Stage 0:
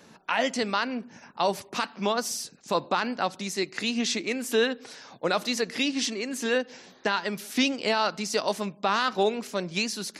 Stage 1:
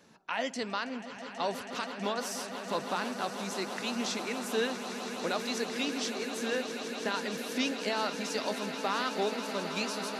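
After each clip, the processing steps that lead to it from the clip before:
echo that builds up and dies away 162 ms, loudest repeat 8, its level −13.5 dB
level −7.5 dB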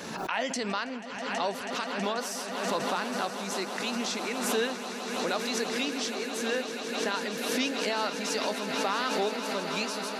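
low-shelf EQ 140 Hz −6.5 dB
background raised ahead of every attack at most 35 dB per second
level +2 dB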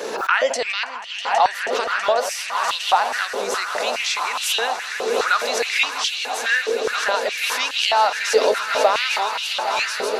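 high-pass on a step sequencer 4.8 Hz 450–3,000 Hz
level +7 dB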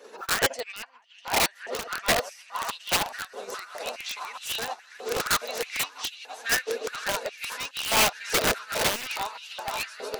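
spectral magnitudes quantised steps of 15 dB
wrap-around overflow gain 13 dB
expander for the loud parts 2.5 to 1, over −35 dBFS
level −1.5 dB

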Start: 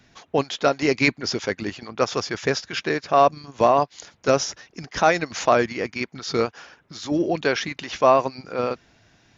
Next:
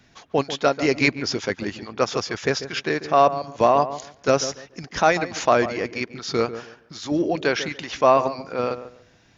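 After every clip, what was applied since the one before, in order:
feedback echo with a low-pass in the loop 143 ms, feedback 24%, low-pass 1,300 Hz, level −11.5 dB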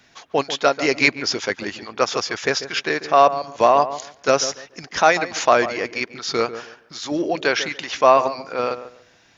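low-shelf EQ 300 Hz −12 dB
level +4.5 dB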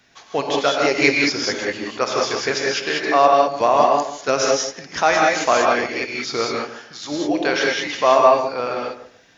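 reverb whose tail is shaped and stops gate 220 ms rising, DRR −1.5 dB
level −2.5 dB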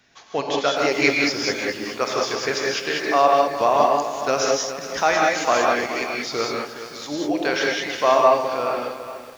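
feedback echo at a low word length 418 ms, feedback 35%, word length 6 bits, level −11 dB
level −2.5 dB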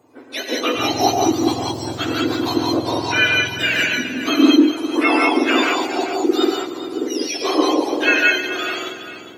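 frequency axis turned over on the octave scale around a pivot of 1,300 Hz
high-pass filter sweep 120 Hz → 330 Hz, 0:03.42–0:04.73
mains-hum notches 50/100/150 Hz
level +3 dB

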